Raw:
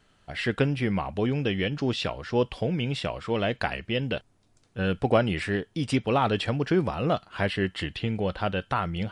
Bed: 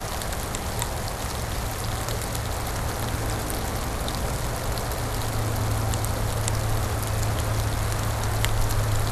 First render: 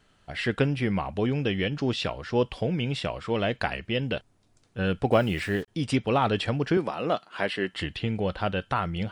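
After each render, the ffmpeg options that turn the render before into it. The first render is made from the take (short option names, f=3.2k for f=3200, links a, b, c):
-filter_complex "[0:a]asettb=1/sr,asplit=3[a][b][c];[a]atrim=end=5.124[d];[b]atrim=start=5.12:end=5.68,asetpts=PTS-STARTPTS,afade=t=in:d=0.004:c=qsin,afade=t=out:st=0.556:d=0.004:c=qsin,acrusher=bits=7:mix=0:aa=0.5[e];[c]atrim=start=5.676[f];[d][e]acrossfade=d=0.004:c1=hsin:c2=qsin[g];[g][f]acrossfade=d=0.004:c1=qsin:c2=hsin,asettb=1/sr,asplit=3[h][i][j];[h]atrim=end=6.774[k];[i]atrim=start=6.77:end=7.73,asetpts=PTS-STARTPTS,afade=t=in:d=0.004:c=qsin,afade=t=out:st=0.956:d=0.004:c=qsin,highpass=250[l];[j]atrim=start=7.726[m];[k][l]acrossfade=d=0.004:c1=hsin:c2=qsin[n];[n][m]acrossfade=d=0.004:c1=qsin:c2=hsin"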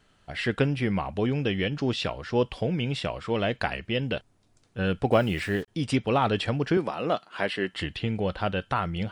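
-af anull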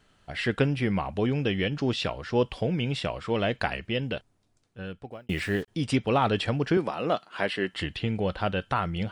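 -filter_complex "[0:a]asplit=2[a][b];[a]atrim=end=5.29,asetpts=PTS-STARTPTS,afade=t=out:st=3.77:d=1.52[c];[b]atrim=start=5.29,asetpts=PTS-STARTPTS,afade=t=in:d=0.004:c=hsin[d];[c][d]concat=n=2:v=0:a=1"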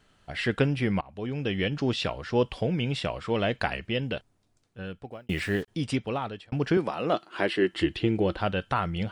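-filter_complex "[0:a]asettb=1/sr,asplit=3[a][b][c];[a]atrim=end=7.134[d];[b]atrim=start=7.13:end=8.37,asetpts=PTS-STARTPTS,afade=t=in:d=0.004:c=qsin,afade=t=out:st=1.236:d=0.004:c=qsin,equalizer=f=340:t=o:w=0.31:g=15[e];[c]atrim=start=8.366[f];[d][e]acrossfade=d=0.004:c1=hsin:c2=qsin[g];[g][f]acrossfade=d=0.004:c1=qsin:c2=hsin,asplit=3[h][i][j];[h]atrim=end=1.01,asetpts=PTS-STARTPTS,afade=t=out:st=1.006:d=0.004:c=hsin:silence=0.0794328[k];[i]atrim=start=1.01:end=6.52,asetpts=PTS-STARTPTS,afade=t=in:d=0.63:silence=0.0794328,afade=t=out:st=4.7:d=0.81[l];[j]atrim=start=6.52,asetpts=PTS-STARTPTS,afade=t=in:d=0.004:c=hsin[m];[k][l][m]concat=n=3:v=0:a=1"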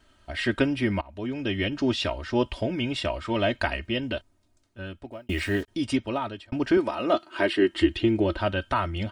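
-af "equalizer=f=70:t=o:w=1.1:g=4,aecho=1:1:3.2:0.78"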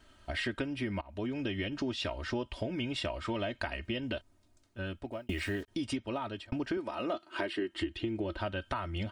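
-af "acompressor=threshold=-32dB:ratio=6"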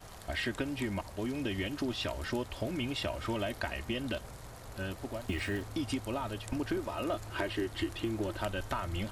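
-filter_complex "[1:a]volume=-20dB[a];[0:a][a]amix=inputs=2:normalize=0"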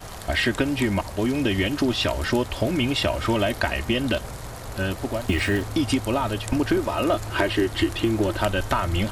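-af "volume=12dB"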